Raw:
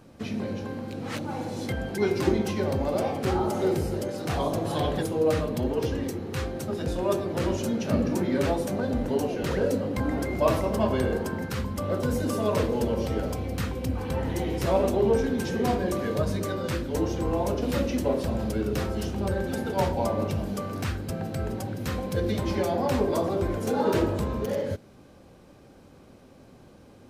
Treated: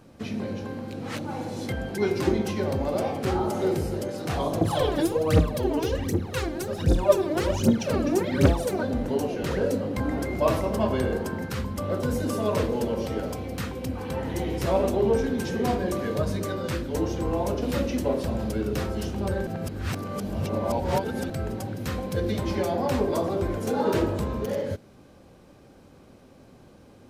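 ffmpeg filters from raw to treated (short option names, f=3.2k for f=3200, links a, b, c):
-filter_complex "[0:a]asettb=1/sr,asplit=3[a][b][c];[a]atrim=end=4.614[d];[b]atrim=start=4.61:end=8.83,asetpts=PTS-STARTPTS,afade=t=in:d=0.004:c=qsin,afade=t=out:st=4.216:d=0.004:c=qsin,aphaser=in_gain=1:out_gain=1:delay=3.5:decay=0.75:speed=1.3:type=triangular[e];[c]atrim=start=8.826[f];[d][e]acrossfade=d=0.004:c1=hsin:c2=qsin[g];[g][f]acrossfade=d=0.004:c1=qsin:c2=hsin,asettb=1/sr,asplit=3[h][i][j];[h]atrim=end=12.764[k];[i]atrim=start=12.76:end=14.34,asetpts=PTS-STARTPTS,afade=t=in:d=0.004:c=qsin,afade=t=out:st=1.576:d=0.004:c=qsin,highpass=f=110:p=1[l];[j]atrim=start=14.336[m];[k][l]acrossfade=d=0.004:c1=hsin:c2=qsin[n];[n][m]acrossfade=d=0.004:c1=qsin:c2=hsin,asplit=3[o][p][q];[o]atrim=end=19.472[r];[p]atrim=start=19.468:end=21.302,asetpts=PTS-STARTPTS,areverse[s];[q]atrim=start=21.298[t];[r][s]acrossfade=d=0.004:c1=hsin:c2=hsin[u];[u][t]acrossfade=d=0.004:c1=hsin:c2=hsin"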